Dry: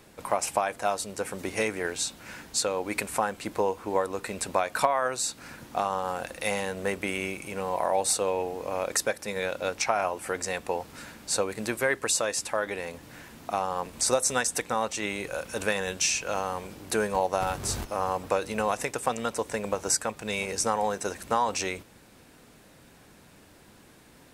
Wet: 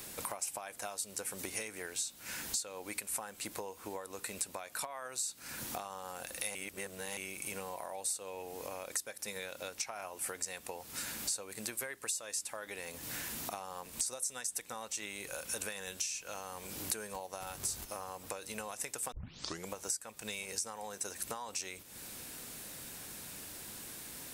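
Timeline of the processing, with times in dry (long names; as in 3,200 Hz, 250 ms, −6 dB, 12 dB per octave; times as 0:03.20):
0:06.55–0:07.17: reverse
0:19.12: tape start 0.57 s
whole clip: high-shelf EQ 2,100 Hz +9 dB; downward compressor 16 to 1, threshold −39 dBFS; high-shelf EQ 7,700 Hz +11 dB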